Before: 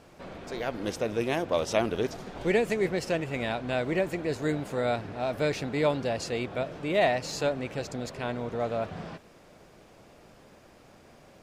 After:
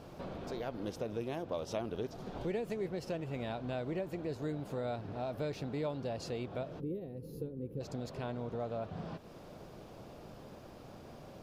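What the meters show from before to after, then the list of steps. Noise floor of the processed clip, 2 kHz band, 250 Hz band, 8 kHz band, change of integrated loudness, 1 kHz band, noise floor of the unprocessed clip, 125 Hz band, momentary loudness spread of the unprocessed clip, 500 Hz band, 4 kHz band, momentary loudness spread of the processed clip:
−52 dBFS, −16.5 dB, −8.0 dB, −14.5 dB, −10.0 dB, −11.0 dB, −55 dBFS, −5.5 dB, 8 LU, −10.0 dB, −13.0 dB, 14 LU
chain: octave-band graphic EQ 125/2,000/8,000 Hz +3/−8/−8 dB
downward compressor 2.5 to 1, threshold −45 dBFS, peak gain reduction 16 dB
gain on a spectral selection 0:06.80–0:07.81, 540–9,800 Hz −23 dB
level +3.5 dB

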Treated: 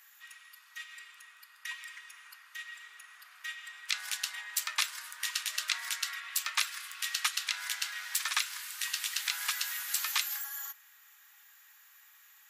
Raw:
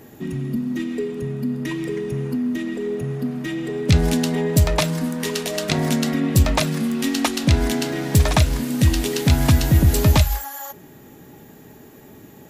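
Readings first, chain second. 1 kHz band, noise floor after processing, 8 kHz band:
−14.5 dB, −60 dBFS, −5.5 dB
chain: Butterworth high-pass 1,200 Hz 36 dB per octave
level −5.5 dB

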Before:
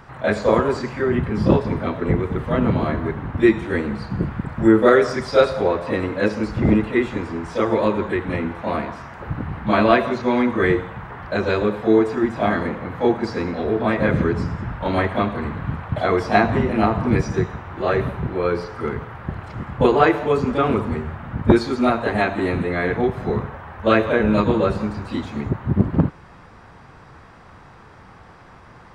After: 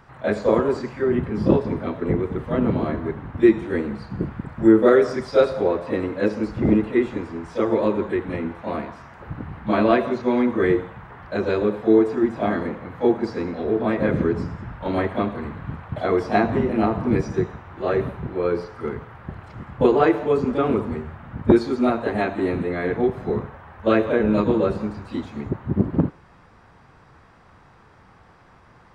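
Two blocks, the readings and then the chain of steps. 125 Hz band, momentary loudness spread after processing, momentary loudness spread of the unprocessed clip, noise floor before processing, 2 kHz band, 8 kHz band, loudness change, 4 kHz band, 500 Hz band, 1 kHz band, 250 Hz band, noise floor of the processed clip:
−4.5 dB, 13 LU, 10 LU, −45 dBFS, −6.0 dB, can't be measured, −1.5 dB, −6.5 dB, −1.0 dB, −4.5 dB, −1.0 dB, −52 dBFS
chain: dynamic equaliser 340 Hz, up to +7 dB, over −28 dBFS, Q 0.7
level −6.5 dB

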